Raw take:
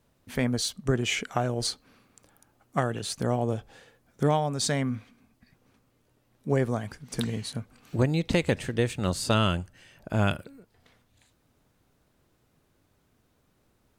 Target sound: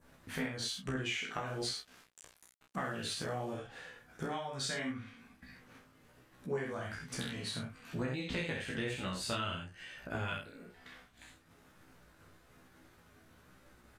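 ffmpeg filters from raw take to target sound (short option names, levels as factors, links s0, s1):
-filter_complex "[0:a]equalizer=f=1600:w=1.2:g=8,aecho=1:1:12|65:0.562|0.631,adynamicequalizer=threshold=0.0112:dfrequency=3100:dqfactor=1.2:tfrequency=3100:tqfactor=1.2:attack=5:release=100:ratio=0.375:range=3:mode=boostabove:tftype=bell,acompressor=threshold=0.0316:ratio=5,asettb=1/sr,asplit=3[s0][s1][s2];[s0]atrim=end=1.464[s3];[s1]atrim=start=1.46:end=3.54,asetpts=PTS-STARTPTS,afade=t=in:d=0.004:c=qsin,afade=t=out:st=2.076:d=0.004:c=qsin,aeval=exprs='val(0)*gte(abs(val(0)),0.00376)':c=same[s4];[s2]atrim=start=3.536[s5];[s3][s4]acrossfade=d=0.004:c1=hsin:c2=qsin[s6];[s6][s5]acrossfade=d=0.004:c1=qsin:c2=hsin,asplit=2[s7][s8];[s8]adelay=31,volume=0.596[s9];[s7][s9]amix=inputs=2:normalize=0,agate=range=0.0224:threshold=0.002:ratio=3:detection=peak,flanger=delay=15.5:depth=3.3:speed=1.1,acompressor=mode=upward:threshold=0.00891:ratio=2.5,volume=0.668" -ar 32000 -c:a sbc -b:a 192k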